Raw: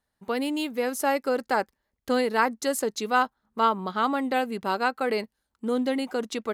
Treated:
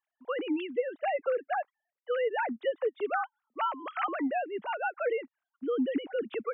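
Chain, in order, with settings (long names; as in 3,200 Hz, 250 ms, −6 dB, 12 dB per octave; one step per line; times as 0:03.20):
three sine waves on the formant tracks
downward compressor 2.5 to 1, threshold −24 dBFS, peak gain reduction 6 dB
level −3 dB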